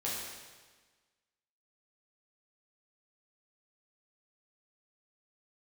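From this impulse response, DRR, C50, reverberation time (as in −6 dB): −7.0 dB, −0.5 dB, 1.4 s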